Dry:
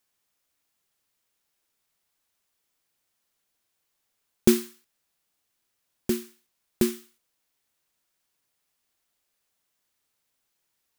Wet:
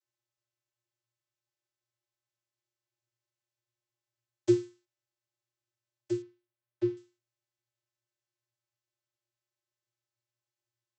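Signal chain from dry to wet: high shelf 4200 Hz +11.5 dB; vocoder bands 32, square 118 Hz; 6.22–6.97 air absorption 230 m; gain -4.5 dB

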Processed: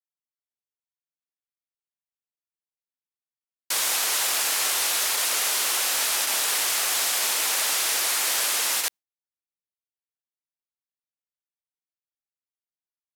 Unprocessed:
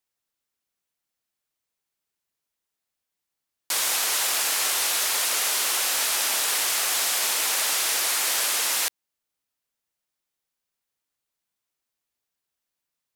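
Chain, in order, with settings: gate with hold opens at -14 dBFS

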